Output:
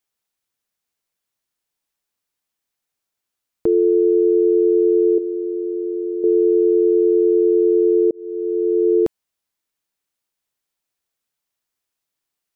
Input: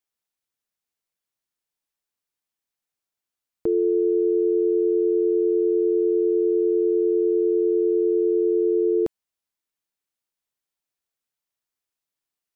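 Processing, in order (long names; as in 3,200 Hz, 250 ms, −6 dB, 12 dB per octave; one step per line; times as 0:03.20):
0:05.18–0:06.24: flat-topped bell 510 Hz −11 dB 1.2 octaves
0:08.11–0:08.93: fade in
level +5.5 dB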